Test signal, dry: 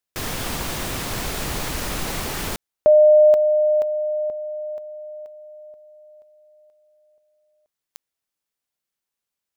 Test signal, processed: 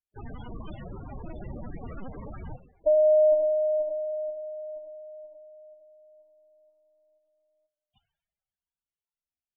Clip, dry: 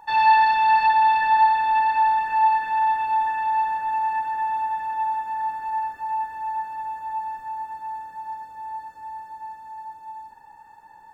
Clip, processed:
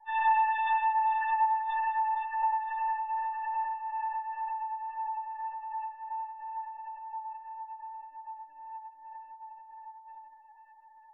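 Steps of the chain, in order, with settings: two-slope reverb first 0.76 s, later 2.9 s, DRR 8.5 dB; LPC vocoder at 8 kHz pitch kept; loudest bins only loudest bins 16; gain -8.5 dB

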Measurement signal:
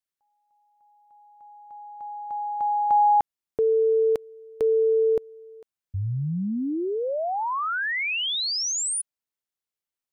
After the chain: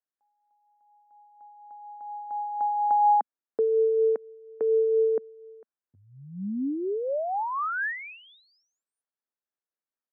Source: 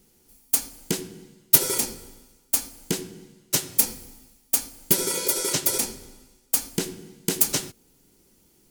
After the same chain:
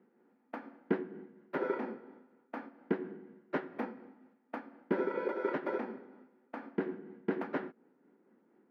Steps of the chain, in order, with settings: elliptic band-pass 220–1700 Hz, stop band 60 dB; tremolo 4.2 Hz, depth 32%

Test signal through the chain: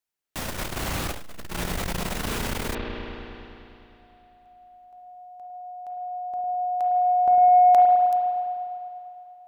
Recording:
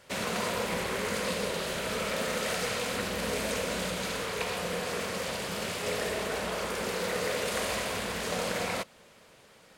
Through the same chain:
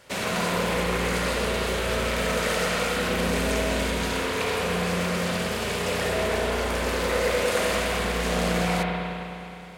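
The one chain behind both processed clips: spring tank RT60 2.9 s, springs 34/51 ms, chirp 55 ms, DRR -0.5 dB; core saturation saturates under 190 Hz; gain +3.5 dB

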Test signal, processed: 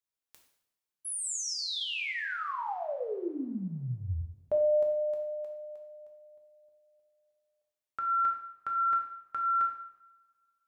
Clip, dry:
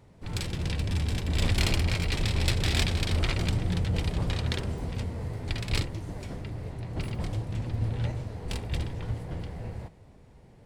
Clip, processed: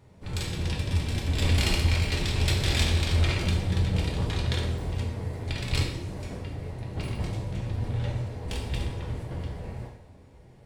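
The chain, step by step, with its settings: two-slope reverb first 0.7 s, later 2.3 s, from -24 dB, DRR 0 dB; gain -1.5 dB

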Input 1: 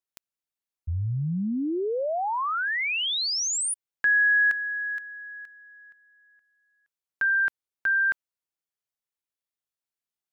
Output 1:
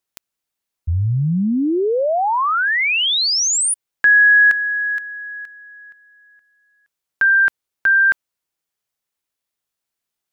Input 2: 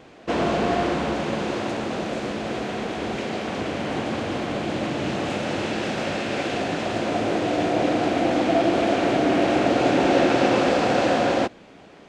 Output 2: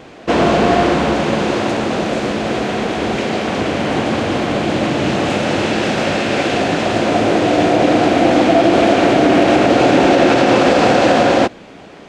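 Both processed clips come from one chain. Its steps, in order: maximiser +10.5 dB; gain -1 dB

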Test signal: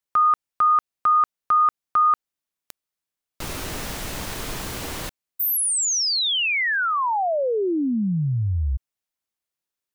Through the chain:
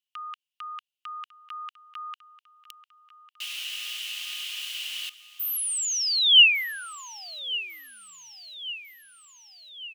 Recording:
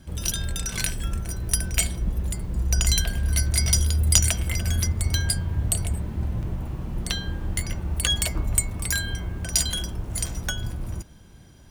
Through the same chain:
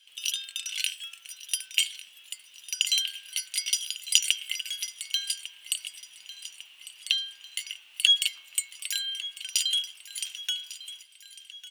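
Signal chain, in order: resonant high-pass 2900 Hz, resonance Q 8.3; on a send: feedback echo 1.15 s, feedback 56%, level -16 dB; on the sum: gain -7 dB

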